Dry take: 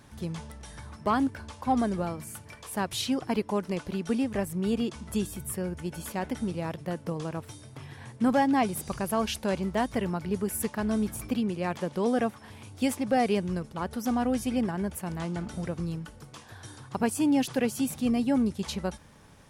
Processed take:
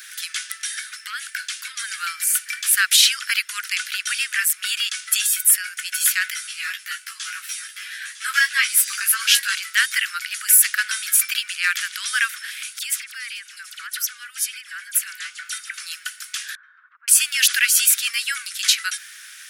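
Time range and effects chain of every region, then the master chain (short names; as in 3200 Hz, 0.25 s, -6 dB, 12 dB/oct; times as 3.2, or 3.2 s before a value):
0.68–1.91 HPF 1300 Hz + compressor 4:1, threshold -41 dBFS
6.3–9.55 doubler 20 ms -8 dB + echo 0.953 s -12.5 dB + ensemble effect
12.79–15.74 compressor 12:1, threshold -36 dBFS + dispersion lows, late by 42 ms, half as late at 2500 Hz
16.55–17.08 compressor 12:1, threshold -36 dBFS + ladder low-pass 1200 Hz, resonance 40%
whole clip: steep high-pass 1400 Hz 72 dB/oct; high shelf 10000 Hz +6.5 dB; maximiser +21.5 dB; gain -1 dB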